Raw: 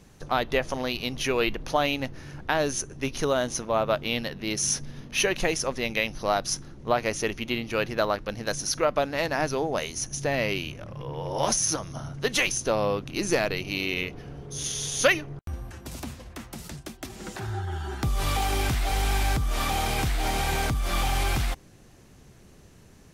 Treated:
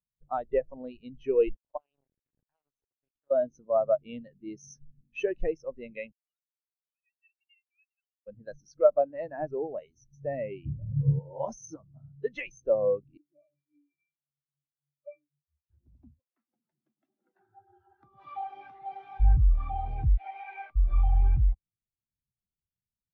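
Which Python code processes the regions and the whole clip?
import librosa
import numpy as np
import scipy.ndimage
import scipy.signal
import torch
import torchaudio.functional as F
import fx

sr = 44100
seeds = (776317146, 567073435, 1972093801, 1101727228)

y = fx.chain(x, sr, fx.level_steps(step_db=21),
    fx.quant_dither(seeds[0], bits=6, dither='none'), at=(1.55, 3.31))
y = fx.chain(y, sr, fx.sine_speech(),
    fx.cheby2_highpass(hz=580.0, order=4, stop_db=70), at=(6.12, 8.27))
y = fx.chain(y, sr, fx.highpass(hz=110.0, slope=6),
    fx.tilt_eq(slope=-4.5), at=(10.65, 11.19))
y = fx.chain(y, sr, fx.highpass(hz=370.0, slope=6),
    fx.octave_resonator(note='D', decay_s=0.27), at=(13.17, 15.7))
y = fx.chain(y, sr, fx.weighting(curve='A'),
    fx.echo_opening(ms=108, hz=200, octaves=1, feedback_pct=70, wet_db=0), at=(16.2, 19.2))
y = fx.chain(y, sr, fx.highpass(hz=540.0, slope=12),
    fx.peak_eq(hz=2400.0, db=6.0, octaves=0.73),
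    fx.running_max(window=3), at=(20.17, 20.76))
y = scipy.signal.sosfilt(scipy.signal.butter(2, 10000.0, 'lowpass', fs=sr, output='sos'), y)
y = fx.high_shelf(y, sr, hz=4700.0, db=-7.0)
y = fx.spectral_expand(y, sr, expansion=2.5)
y = y * 10.0 ** (1.5 / 20.0)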